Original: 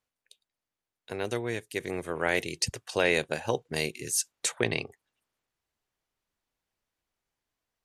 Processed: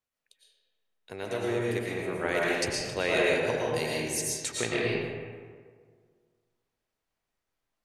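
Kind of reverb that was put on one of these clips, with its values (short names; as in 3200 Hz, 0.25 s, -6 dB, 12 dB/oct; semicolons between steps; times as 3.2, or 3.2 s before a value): digital reverb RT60 1.8 s, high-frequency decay 0.5×, pre-delay 75 ms, DRR -5 dB; gain -5 dB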